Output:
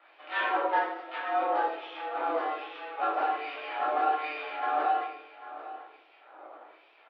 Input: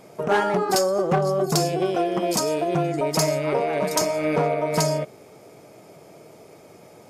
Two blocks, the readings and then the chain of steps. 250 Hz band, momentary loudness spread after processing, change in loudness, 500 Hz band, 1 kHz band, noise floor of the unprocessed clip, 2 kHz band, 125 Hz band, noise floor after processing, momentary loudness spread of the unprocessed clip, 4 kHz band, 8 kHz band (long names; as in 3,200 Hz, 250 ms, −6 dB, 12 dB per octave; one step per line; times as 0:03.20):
−17.5 dB, 16 LU, −8.0 dB, −13.0 dB, −1.0 dB, −49 dBFS, −2.0 dB, below −40 dB, −59 dBFS, 2 LU, −13.0 dB, below −40 dB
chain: in parallel at +2 dB: downward compressor, threshold −30 dBFS, peak gain reduction 13 dB
on the sum: auto-filter band-pass sine 1.2 Hz 510–2,900 Hz
half-wave rectification
double-tracking delay 17 ms −13 dB
on a send: single-tap delay 791 ms −15 dB
on the sum: rectangular room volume 900 cubic metres, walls furnished, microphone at 5.8 metres
single-sideband voice off tune +140 Hz 200–3,600 Hz
level −6.5 dB